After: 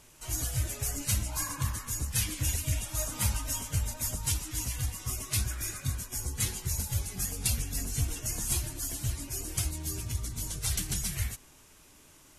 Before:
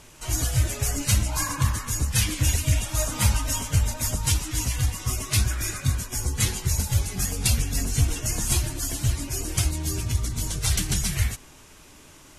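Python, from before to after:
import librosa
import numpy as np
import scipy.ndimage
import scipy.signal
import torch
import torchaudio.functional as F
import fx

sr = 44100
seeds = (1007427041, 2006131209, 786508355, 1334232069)

y = fx.high_shelf(x, sr, hz=10000.0, db=10.0)
y = F.gain(torch.from_numpy(y), -9.0).numpy()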